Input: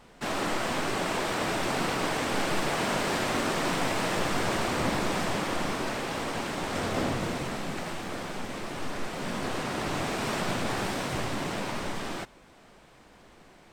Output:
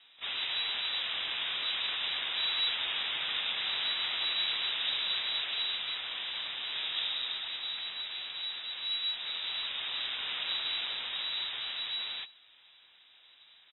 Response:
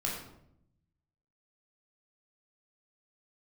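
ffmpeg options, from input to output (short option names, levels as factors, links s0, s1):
-filter_complex "[0:a]asplit=3[s0][s1][s2];[s1]asetrate=33038,aresample=44100,atempo=1.33484,volume=0.562[s3];[s2]asetrate=88200,aresample=44100,atempo=0.5,volume=0.141[s4];[s0][s3][s4]amix=inputs=3:normalize=0,lowpass=f=3300:t=q:w=0.5098,lowpass=f=3300:t=q:w=0.6013,lowpass=f=3300:t=q:w=0.9,lowpass=f=3300:t=q:w=2.563,afreqshift=-3900,volume=0.473"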